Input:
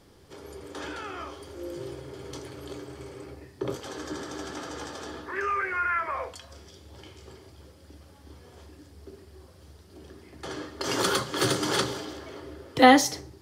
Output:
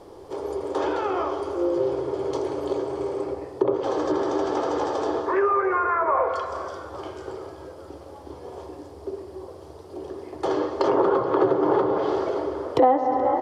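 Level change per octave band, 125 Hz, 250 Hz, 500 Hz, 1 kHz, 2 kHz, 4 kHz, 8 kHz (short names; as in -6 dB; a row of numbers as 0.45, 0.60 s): -0.5 dB, +3.0 dB, +10.0 dB, +4.5 dB, -4.5 dB, -10.5 dB, under -10 dB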